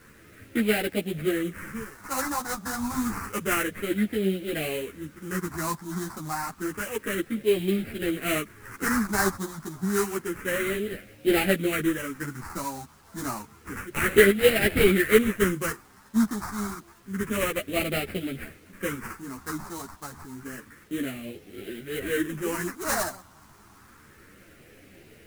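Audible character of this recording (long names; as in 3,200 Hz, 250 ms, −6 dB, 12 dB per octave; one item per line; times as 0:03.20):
aliases and images of a low sample rate 3,500 Hz, jitter 20%
phaser sweep stages 4, 0.29 Hz, lowest notch 470–1,000 Hz
a quantiser's noise floor 10 bits, dither none
a shimmering, thickened sound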